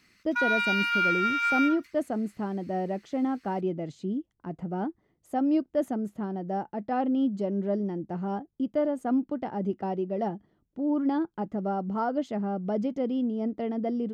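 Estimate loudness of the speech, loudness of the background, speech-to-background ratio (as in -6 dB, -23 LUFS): -30.0 LUFS, -25.5 LUFS, -4.5 dB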